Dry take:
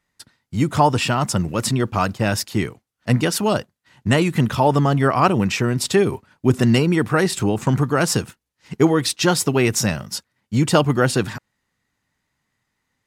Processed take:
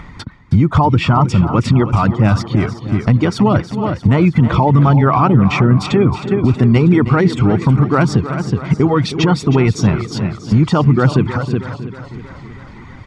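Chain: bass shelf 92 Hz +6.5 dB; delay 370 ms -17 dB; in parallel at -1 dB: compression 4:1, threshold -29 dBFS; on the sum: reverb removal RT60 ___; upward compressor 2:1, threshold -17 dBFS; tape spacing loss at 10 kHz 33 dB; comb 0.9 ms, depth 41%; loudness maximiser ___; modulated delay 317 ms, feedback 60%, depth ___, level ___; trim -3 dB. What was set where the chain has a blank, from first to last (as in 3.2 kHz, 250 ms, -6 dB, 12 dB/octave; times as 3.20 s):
0.73 s, +13 dB, 50 cents, -12 dB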